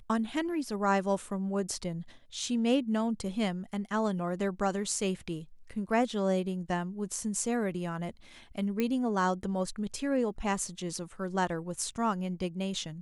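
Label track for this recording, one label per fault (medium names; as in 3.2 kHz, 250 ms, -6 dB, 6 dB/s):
8.800000	8.800000	pop -17 dBFS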